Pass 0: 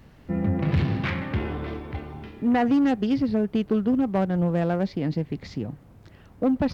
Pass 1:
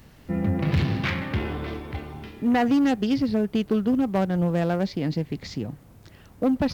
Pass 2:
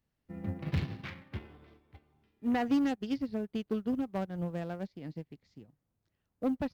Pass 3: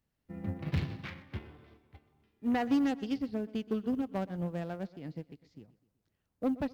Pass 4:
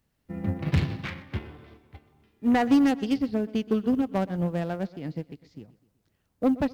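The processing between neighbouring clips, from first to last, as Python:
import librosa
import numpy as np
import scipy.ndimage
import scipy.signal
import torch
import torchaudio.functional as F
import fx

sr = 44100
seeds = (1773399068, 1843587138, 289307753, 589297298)

y1 = fx.high_shelf(x, sr, hz=4000.0, db=11.0)
y2 = fx.upward_expand(y1, sr, threshold_db=-35.0, expansion=2.5)
y2 = y2 * 10.0 ** (-6.0 / 20.0)
y3 = fx.echo_feedback(y2, sr, ms=125, feedback_pct=49, wet_db=-19.0)
y4 = fx.tracing_dist(y3, sr, depth_ms=0.036)
y4 = y4 * 10.0 ** (8.0 / 20.0)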